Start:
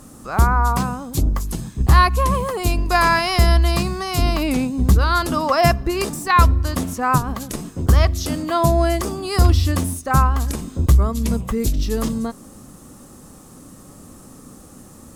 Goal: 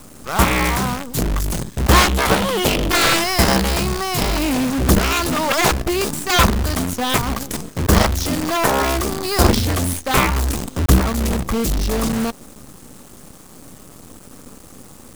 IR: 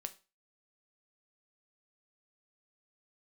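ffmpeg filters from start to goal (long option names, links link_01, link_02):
-filter_complex "[0:a]acrusher=bits=5:dc=4:mix=0:aa=0.000001,asettb=1/sr,asplit=3[link_01][link_02][link_03];[link_01]atrim=end=1.904[link_04];[link_02]atrim=start=1.9:end=3.24,asetpts=PTS-STARTPTS,afade=type=in:duration=0.004:curve=qsin,afade=type=out:start_time=1.336:duration=0.004:curve=qsin,equalizer=frequency=200:width_type=o:width=0.33:gain=11,equalizer=frequency=315:width_type=o:width=0.33:gain=10,equalizer=frequency=3150:width_type=o:width=0.33:gain=11[link_05];[link_03]atrim=start=3.236[link_06];[link_04][link_05]acrossfade=duration=0.004:curve1=hsin:curve2=qsin[link_07];[link_07][link_06]acrossfade=duration=0.004:curve1=qsin:curve2=hsin,aeval=exprs='0.841*(cos(1*acos(clip(val(0)/0.841,-1,1)))-cos(1*PI/2))+0.422*(cos(7*acos(clip(val(0)/0.841,-1,1)))-cos(7*PI/2))':channel_layout=same,volume=-3.5dB"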